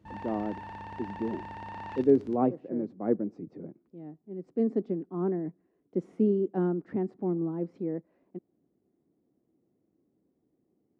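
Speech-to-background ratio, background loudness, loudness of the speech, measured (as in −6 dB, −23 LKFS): 11.5 dB, −42.5 LKFS, −31.0 LKFS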